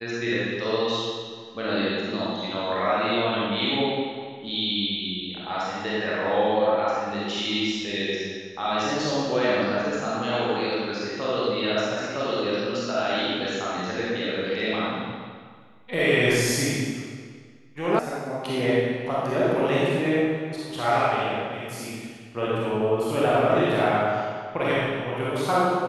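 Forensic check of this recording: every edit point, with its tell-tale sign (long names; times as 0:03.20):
0:17.99: cut off before it has died away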